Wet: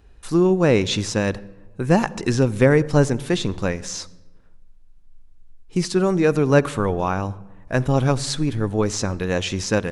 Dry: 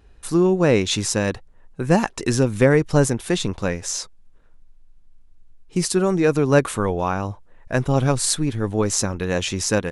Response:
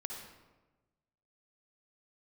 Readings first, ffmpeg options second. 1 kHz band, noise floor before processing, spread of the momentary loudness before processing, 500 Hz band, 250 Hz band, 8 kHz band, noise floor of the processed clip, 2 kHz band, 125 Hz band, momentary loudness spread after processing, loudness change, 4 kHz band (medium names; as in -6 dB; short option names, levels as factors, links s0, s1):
0.0 dB, -50 dBFS, 9 LU, 0.0 dB, +0.5 dB, -6.0 dB, -47 dBFS, 0.0 dB, +1.0 dB, 11 LU, 0.0 dB, -1.0 dB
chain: -filter_complex "[0:a]acrossover=split=6300[s0][s1];[s1]acompressor=threshold=0.00794:ratio=4:attack=1:release=60[s2];[s0][s2]amix=inputs=2:normalize=0,asplit=2[s3][s4];[1:a]atrim=start_sample=2205,lowshelf=f=270:g=8.5[s5];[s4][s5]afir=irnorm=-1:irlink=0,volume=0.158[s6];[s3][s6]amix=inputs=2:normalize=0,volume=0.891"